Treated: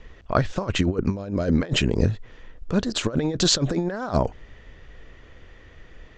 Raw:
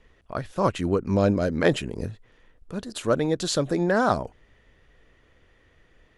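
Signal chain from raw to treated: negative-ratio compressor -27 dBFS, ratio -0.5; steep low-pass 7300 Hz 48 dB/oct; low shelf 80 Hz +6 dB; gain +5 dB

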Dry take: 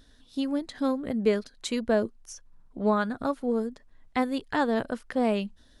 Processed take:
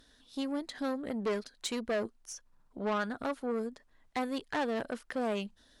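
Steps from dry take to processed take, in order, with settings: tube stage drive 25 dB, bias 0.25; low shelf 240 Hz -9.5 dB

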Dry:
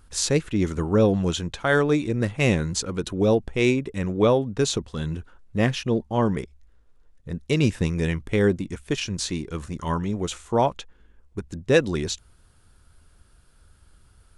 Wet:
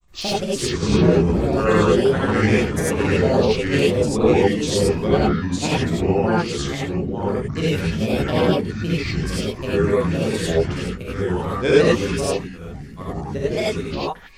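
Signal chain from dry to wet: echoes that change speed 0.297 s, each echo -2 st, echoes 2; grains, pitch spread up and down by 7 st; non-linear reverb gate 0.12 s rising, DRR -7 dB; gain -4 dB

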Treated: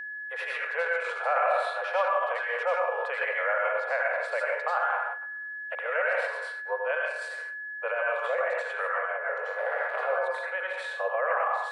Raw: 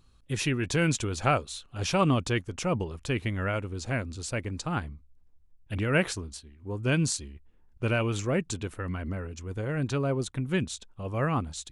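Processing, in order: 9.37–10.08 cycle switcher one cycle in 2, muted; band shelf 4200 Hz -10 dB; narrowing echo 96 ms, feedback 68%, band-pass 1300 Hz, level -22 dB; plate-style reverb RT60 0.56 s, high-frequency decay 1×, pre-delay 75 ms, DRR -5.5 dB; gate -40 dBFS, range -11 dB; AGC gain up to 11.5 dB; limiter -20 dBFS, peak gain reduction 18.5 dB; steep high-pass 490 Hz 96 dB/oct; air absorption 390 m; whine 1700 Hz -42 dBFS; 3.21–3.76 three-band squash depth 70%; gain +7 dB

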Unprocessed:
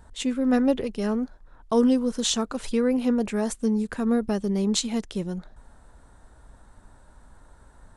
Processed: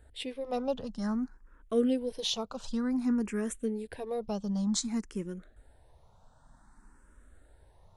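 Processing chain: endless phaser +0.54 Hz; gain -4.5 dB

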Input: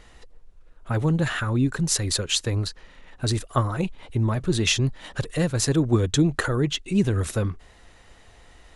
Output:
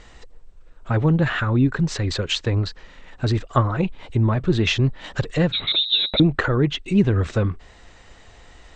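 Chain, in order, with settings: 5.52–6.2 inverted band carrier 3900 Hz; treble ducked by the level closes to 3000 Hz, closed at -21 dBFS; gain +4 dB; MP2 64 kbps 32000 Hz

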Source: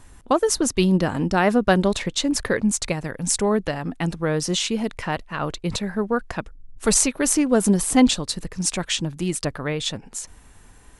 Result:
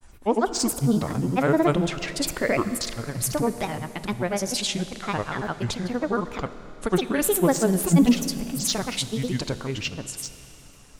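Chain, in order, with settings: grains 0.1 s, grains 20/s, spray 0.1 s, pitch spread up and down by 7 st; Schroeder reverb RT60 3.4 s, combs from 26 ms, DRR 12 dB; gain -1.5 dB

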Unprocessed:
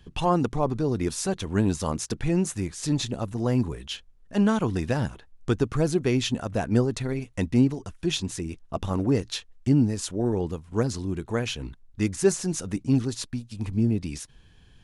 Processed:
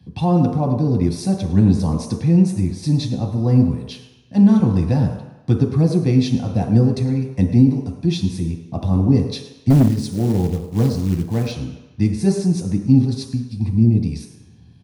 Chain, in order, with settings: HPF 41 Hz 24 dB/oct; low shelf 170 Hz -2.5 dB; echo 0.106 s -17.5 dB; reverb RT60 1.0 s, pre-delay 3 ms, DRR 1 dB; 9.7–11.52 companded quantiser 6-bit; maximiser -5.5 dB; gain -2 dB

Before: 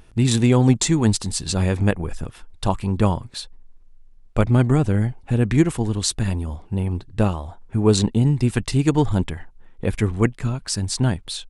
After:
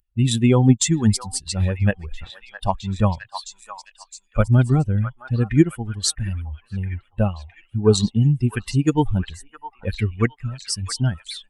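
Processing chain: per-bin expansion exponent 2; delay with a stepping band-pass 0.662 s, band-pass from 1200 Hz, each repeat 0.7 oct, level -6.5 dB; gain +4 dB; Opus 64 kbps 48000 Hz

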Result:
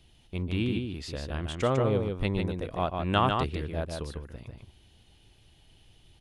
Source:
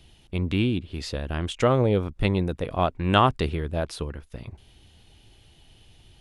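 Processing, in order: echo 0.149 s -4.5 dB; gain -6 dB

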